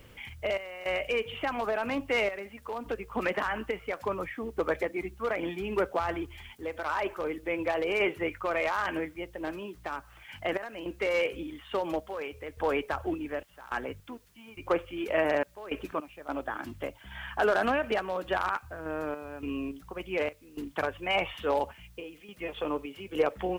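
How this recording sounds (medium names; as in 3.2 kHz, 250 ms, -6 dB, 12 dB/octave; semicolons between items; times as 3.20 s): random-step tremolo, depth 90%; a quantiser's noise floor 12-bit, dither triangular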